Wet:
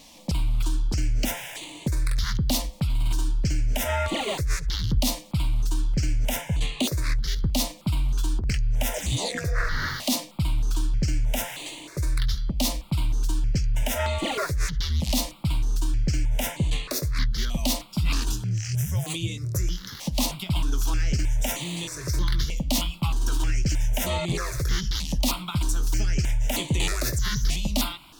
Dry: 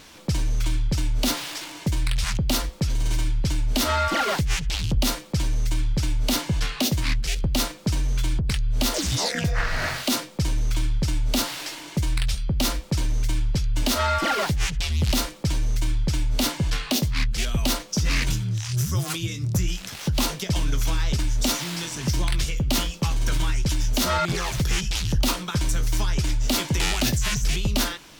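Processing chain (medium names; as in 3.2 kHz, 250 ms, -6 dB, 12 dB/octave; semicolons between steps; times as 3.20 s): stepped phaser 3.2 Hz 390–5300 Hz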